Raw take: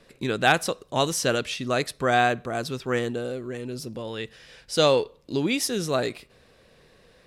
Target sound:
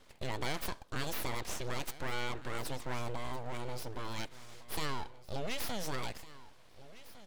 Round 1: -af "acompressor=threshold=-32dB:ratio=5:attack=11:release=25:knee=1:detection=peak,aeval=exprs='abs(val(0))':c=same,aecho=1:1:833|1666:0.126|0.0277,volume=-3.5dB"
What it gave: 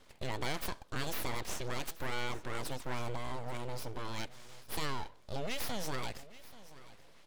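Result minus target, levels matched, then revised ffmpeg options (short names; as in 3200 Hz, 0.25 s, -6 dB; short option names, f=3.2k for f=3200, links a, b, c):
echo 0.623 s early
-af "acompressor=threshold=-32dB:ratio=5:attack=11:release=25:knee=1:detection=peak,aeval=exprs='abs(val(0))':c=same,aecho=1:1:1456|2912:0.126|0.0277,volume=-3.5dB"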